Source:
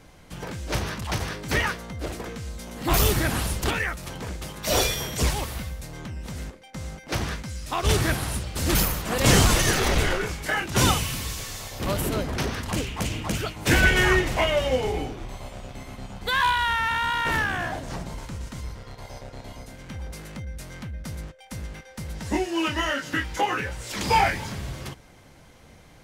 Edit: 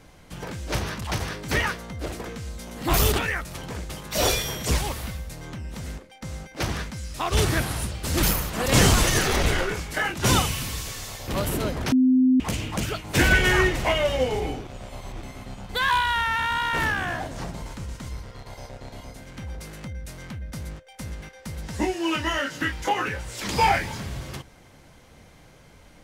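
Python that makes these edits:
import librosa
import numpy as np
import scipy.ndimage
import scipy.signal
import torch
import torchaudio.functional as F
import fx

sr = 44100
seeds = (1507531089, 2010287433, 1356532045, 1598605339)

y = fx.edit(x, sr, fx.cut(start_s=3.12, length_s=0.52),
    fx.bleep(start_s=12.44, length_s=0.48, hz=257.0, db=-14.5),
    fx.reverse_span(start_s=15.19, length_s=0.55), tone=tone)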